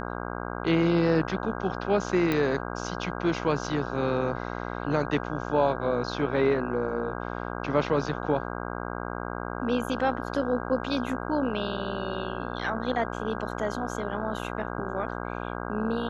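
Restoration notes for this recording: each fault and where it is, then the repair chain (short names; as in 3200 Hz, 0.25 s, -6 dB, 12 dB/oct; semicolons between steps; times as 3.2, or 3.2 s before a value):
buzz 60 Hz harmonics 27 -34 dBFS
2.32 pop -14 dBFS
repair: de-click; de-hum 60 Hz, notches 27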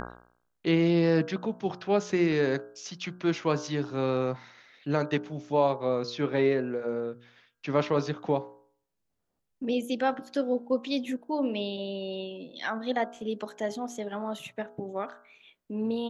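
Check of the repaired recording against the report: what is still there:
none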